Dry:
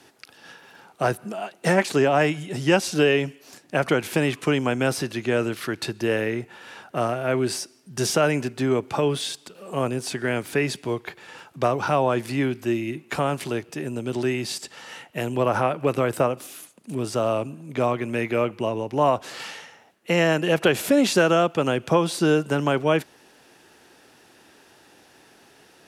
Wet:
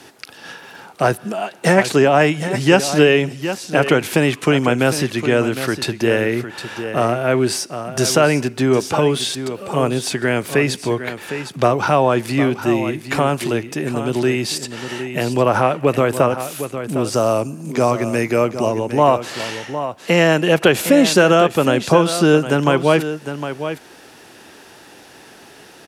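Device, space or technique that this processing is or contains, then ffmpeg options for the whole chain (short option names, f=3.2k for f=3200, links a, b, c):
parallel compression: -filter_complex "[0:a]asettb=1/sr,asplit=3[a][b][c];[a]atrim=end=17.144[d];[b]atrim=start=17.14:end=18.79,asetpts=PTS-STARTPTS,afade=t=in:d=0.004:c=qsin,afade=t=out:st=1.646:d=0.004:c=qsin,highshelf=f=4.2k:t=q:w=3:g=6[e];[c]atrim=start=18.786[f];[d][e]acrossfade=d=0.004:c1=hsin:c2=qsin[g];[g][f]acrossfade=d=0.004:c1=qsin:c2=hsin,aecho=1:1:758:0.266,asplit=2[h][i];[i]acompressor=threshold=-36dB:ratio=6,volume=-3dB[j];[h][j]amix=inputs=2:normalize=0,volume=5.5dB"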